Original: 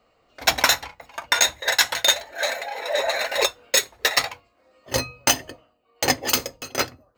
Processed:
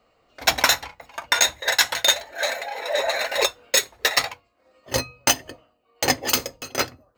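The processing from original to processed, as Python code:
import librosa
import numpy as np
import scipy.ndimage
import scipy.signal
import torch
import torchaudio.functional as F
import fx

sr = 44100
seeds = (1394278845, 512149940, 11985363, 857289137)

y = fx.transient(x, sr, attack_db=0, sustain_db=-4, at=(4.31, 5.46))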